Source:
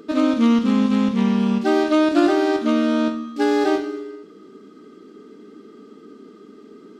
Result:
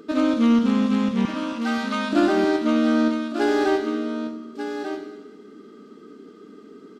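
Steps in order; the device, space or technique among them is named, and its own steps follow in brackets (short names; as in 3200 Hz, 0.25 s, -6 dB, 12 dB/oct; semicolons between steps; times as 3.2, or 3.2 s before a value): 1.25–2.13 HPF 870 Hz 24 dB/oct; bell 1500 Hz +2.5 dB 0.28 oct; echo 1.191 s -9 dB; parallel distortion (in parallel at -9 dB: hard clip -14 dBFS, distortion -15 dB); on the sum: feedback echo 90 ms, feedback 58%, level -14 dB; gain -4.5 dB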